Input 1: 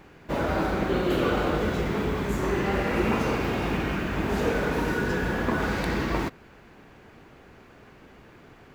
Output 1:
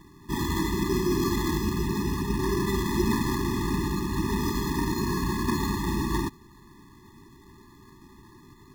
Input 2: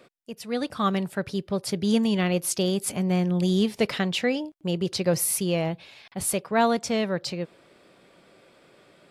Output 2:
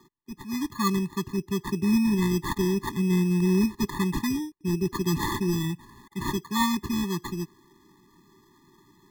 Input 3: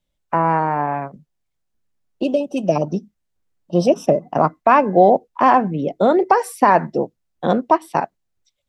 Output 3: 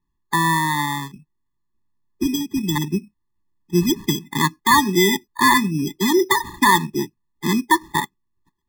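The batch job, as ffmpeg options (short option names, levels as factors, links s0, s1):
-af "acrusher=samples=16:mix=1:aa=0.000001,afftfilt=real='re*eq(mod(floor(b*sr/1024/410),2),0)':imag='im*eq(mod(floor(b*sr/1024/410),2),0)':win_size=1024:overlap=0.75,volume=1.12"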